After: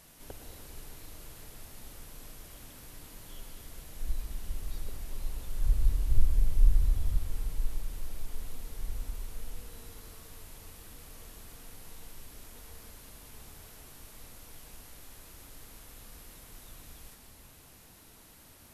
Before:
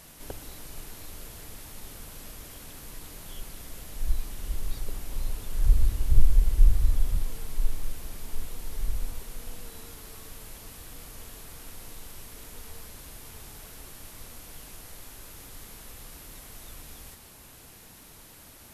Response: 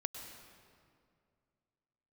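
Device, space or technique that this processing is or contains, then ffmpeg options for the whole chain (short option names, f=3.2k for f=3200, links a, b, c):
stairwell: -filter_complex "[1:a]atrim=start_sample=2205[a];[0:a][a]afir=irnorm=-1:irlink=0,volume=-5dB"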